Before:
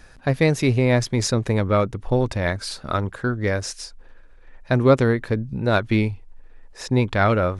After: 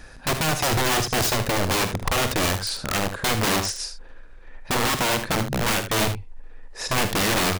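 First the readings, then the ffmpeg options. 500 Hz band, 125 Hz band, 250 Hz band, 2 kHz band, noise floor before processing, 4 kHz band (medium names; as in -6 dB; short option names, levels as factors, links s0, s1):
-6.0 dB, -6.5 dB, -5.5 dB, +2.0 dB, -47 dBFS, +8.5 dB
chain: -af "alimiter=limit=0.224:level=0:latency=1:release=330,aeval=exprs='(mod(11.2*val(0)+1,2)-1)/11.2':c=same,aecho=1:1:45|76:0.237|0.316,volume=1.58"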